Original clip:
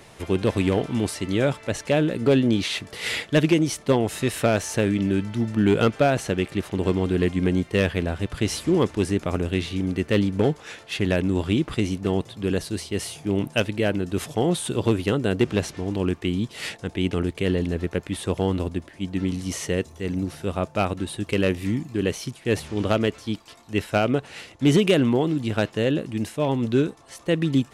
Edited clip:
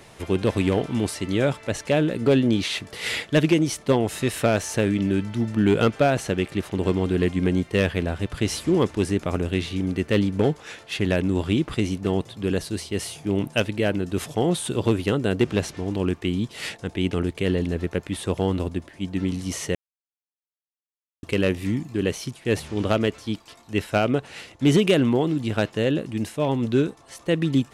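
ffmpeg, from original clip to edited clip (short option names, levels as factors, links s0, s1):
-filter_complex "[0:a]asplit=3[s0][s1][s2];[s0]atrim=end=19.75,asetpts=PTS-STARTPTS,afade=t=out:st=19.746:d=0.004:c=hsin[s3];[s1]atrim=start=19.75:end=21.23,asetpts=PTS-STARTPTS,volume=0[s4];[s2]atrim=start=21.23,asetpts=PTS-STARTPTS,afade=t=in:d=0.004:c=hsin[s5];[s3][s4][s5]concat=n=3:v=0:a=1"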